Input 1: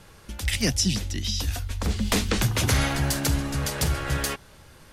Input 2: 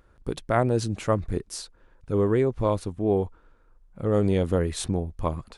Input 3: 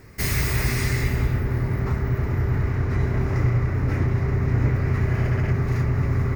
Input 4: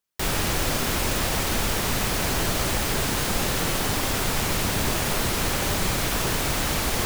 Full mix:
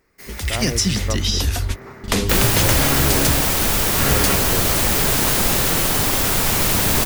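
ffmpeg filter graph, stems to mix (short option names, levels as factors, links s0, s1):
-filter_complex "[0:a]acompressor=threshold=0.0562:ratio=6,volume=1.26[s0];[1:a]volume=0.251,asplit=2[s1][s2];[2:a]highpass=300,volume=0.224[s3];[3:a]highshelf=f=9600:g=9,adelay=2100,volume=0.75[s4];[s2]apad=whole_len=217382[s5];[s0][s5]sidechaingate=range=0.0224:threshold=0.00112:ratio=16:detection=peak[s6];[s6][s1][s3][s4]amix=inputs=4:normalize=0,dynaudnorm=f=210:g=5:m=2.51"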